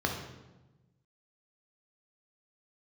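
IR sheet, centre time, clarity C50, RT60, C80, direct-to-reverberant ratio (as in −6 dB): 35 ms, 5.0 dB, 1.1 s, 7.5 dB, 1.0 dB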